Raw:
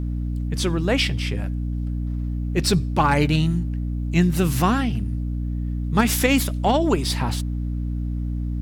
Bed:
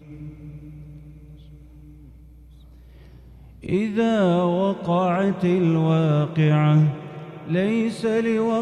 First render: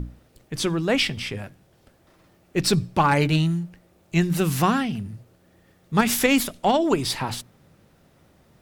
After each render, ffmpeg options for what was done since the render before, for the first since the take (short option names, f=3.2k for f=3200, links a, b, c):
-af "bandreject=f=60:t=h:w=6,bandreject=f=120:t=h:w=6,bandreject=f=180:t=h:w=6,bandreject=f=240:t=h:w=6,bandreject=f=300:t=h:w=6"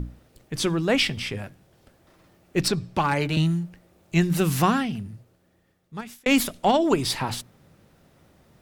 -filter_complex "[0:a]asettb=1/sr,asplit=3[a][b][c];[a]atrim=end=2.684[d];[b]atrim=start=2.68:end=3.37,asetpts=PTS-STARTPTS,afade=t=in:d=0.004:c=qsin,afade=t=out:st=0.686:d=0.004:c=qsin,acrossover=split=460|1900|7200[e][f][g][h];[e]acompressor=threshold=-27dB:ratio=3[i];[f]acompressor=threshold=-23dB:ratio=3[j];[g]acompressor=threshold=-32dB:ratio=3[k];[h]acompressor=threshold=-52dB:ratio=3[l];[i][j][k][l]amix=inputs=4:normalize=0[m];[c]atrim=start=3.366[n];[d][m]acrossfade=d=0.004:c1=hsin:c2=qsin[o];[o][n]acrossfade=d=0.004:c1=qsin:c2=hsin,asplit=2[p][q];[p]atrim=end=6.26,asetpts=PTS-STARTPTS,afade=t=out:st=4.63:d=1.63[r];[q]atrim=start=6.26,asetpts=PTS-STARTPTS,afade=t=in:d=0.004:c=hsin[s];[r][s]concat=n=2:v=0:a=1"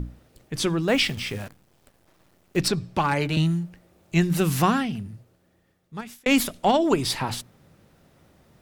-filter_complex "[0:a]asettb=1/sr,asplit=3[a][b][c];[a]atrim=end=0.884[d];[b]atrim=start=0.88:end=2.57,asetpts=PTS-STARTPTS,afade=t=in:d=0.004:c=qsin,afade=t=out:st=1.686:d=0.004:c=qsin,acrusher=bits=8:dc=4:mix=0:aa=0.000001[e];[c]atrim=start=2.566[f];[d][e]acrossfade=d=0.004:c1=hsin:c2=qsin[g];[g][f]acrossfade=d=0.004:c1=qsin:c2=hsin"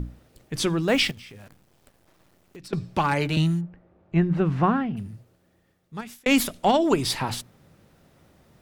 -filter_complex "[0:a]asettb=1/sr,asplit=3[a][b][c];[a]atrim=end=1.114[d];[b]atrim=start=1.11:end=2.73,asetpts=PTS-STARTPTS,afade=t=in:d=0.004:c=qsin,afade=t=out:st=1.616:d=0.004:c=qsin,acompressor=threshold=-42dB:ratio=6:attack=3.2:release=140:knee=1:detection=peak[e];[c]atrim=start=2.726[f];[d][e]acrossfade=d=0.004:c1=hsin:c2=qsin[g];[g][f]acrossfade=d=0.004:c1=qsin:c2=hsin,asplit=3[h][i][j];[h]afade=t=out:st=3.6:d=0.02[k];[i]lowpass=1.5k,afade=t=in:st=3.6:d=0.02,afade=t=out:st=4.96:d=0.02[l];[j]afade=t=in:st=4.96:d=0.02[m];[k][l][m]amix=inputs=3:normalize=0"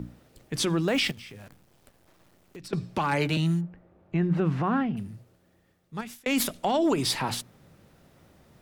-filter_complex "[0:a]acrossover=split=110|7100[a][b][c];[a]acompressor=threshold=-49dB:ratio=6[d];[d][b][c]amix=inputs=3:normalize=0,alimiter=limit=-16dB:level=0:latency=1:release=48"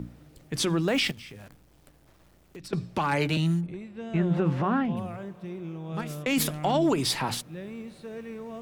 -filter_complex "[1:a]volume=-18dB[a];[0:a][a]amix=inputs=2:normalize=0"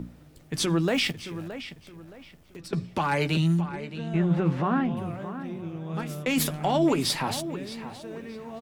-filter_complex "[0:a]asplit=2[a][b];[b]adelay=12,volume=-11dB[c];[a][c]amix=inputs=2:normalize=0,asplit=2[d][e];[e]adelay=620,lowpass=f=4.1k:p=1,volume=-12dB,asplit=2[f][g];[g]adelay=620,lowpass=f=4.1k:p=1,volume=0.31,asplit=2[h][i];[i]adelay=620,lowpass=f=4.1k:p=1,volume=0.31[j];[d][f][h][j]amix=inputs=4:normalize=0"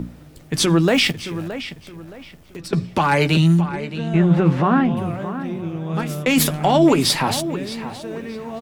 -af "volume=8.5dB"